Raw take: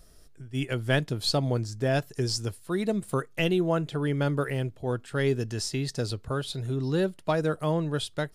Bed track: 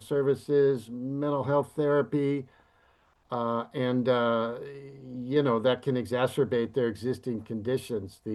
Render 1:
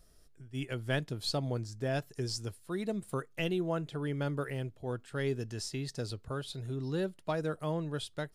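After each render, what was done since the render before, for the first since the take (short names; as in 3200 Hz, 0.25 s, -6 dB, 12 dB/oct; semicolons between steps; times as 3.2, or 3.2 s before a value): gain -7.5 dB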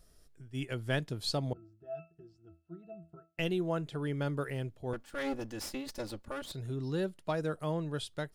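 1.53–3.39 octave resonator E, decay 0.26 s; 4.93–6.52 minimum comb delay 3.5 ms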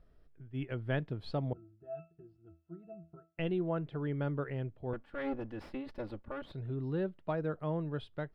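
air absorption 460 m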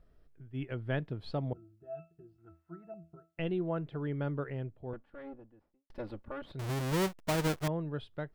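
2.38–2.94 band shelf 1300 Hz +12.5 dB; 4.31–5.9 studio fade out; 6.59–7.68 half-waves squared off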